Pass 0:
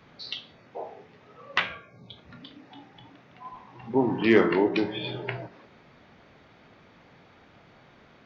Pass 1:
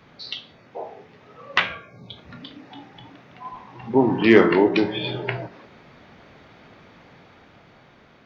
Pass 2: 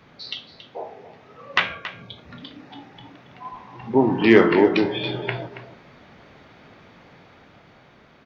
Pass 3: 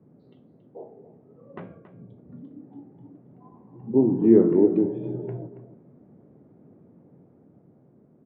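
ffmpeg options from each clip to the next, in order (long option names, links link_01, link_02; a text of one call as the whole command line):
ffmpeg -i in.wav -af "dynaudnorm=framelen=400:gausssize=7:maxgain=3.5dB,volume=3dB" out.wav
ffmpeg -i in.wav -af "aecho=1:1:277:0.211" out.wav
ffmpeg -i in.wav -af "asuperpass=centerf=220:order=4:qfactor=0.74" out.wav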